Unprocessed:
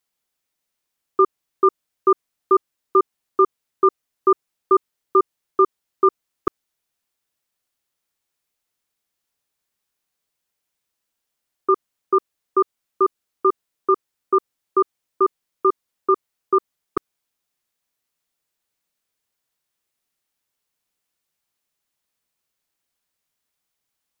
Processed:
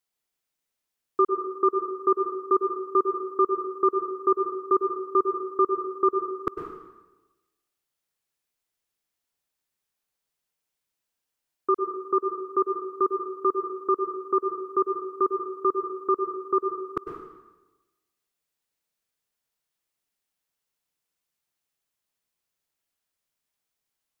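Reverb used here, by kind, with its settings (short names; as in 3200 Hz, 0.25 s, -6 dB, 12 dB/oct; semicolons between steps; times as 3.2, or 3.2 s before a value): plate-style reverb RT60 1.1 s, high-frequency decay 0.85×, pre-delay 90 ms, DRR 4 dB; gain -5.5 dB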